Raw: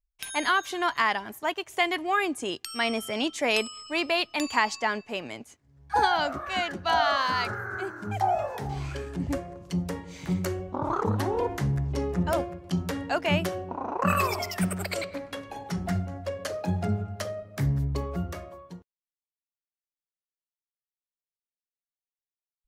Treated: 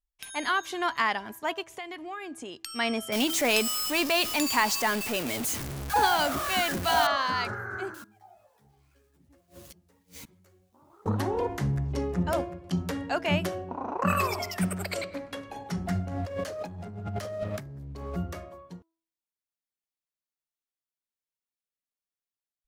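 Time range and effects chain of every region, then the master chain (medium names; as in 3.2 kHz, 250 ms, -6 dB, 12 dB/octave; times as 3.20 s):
1.66–2.60 s: compression 3:1, threshold -37 dBFS + treble shelf 7.7 kHz -5 dB
3.12–7.07 s: jump at every zero crossing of -28.5 dBFS + treble shelf 7.9 kHz +11.5 dB
7.94–11.06 s: zero-crossing glitches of -32 dBFS + inverted gate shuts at -30 dBFS, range -26 dB + three-phase chorus
16.07–18.15 s: waveshaping leveller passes 2 + compressor with a negative ratio -35 dBFS
whole clip: peaking EQ 240 Hz +2.5 dB 0.45 oct; de-hum 327.9 Hz, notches 5; level rider gain up to 4 dB; trim -5.5 dB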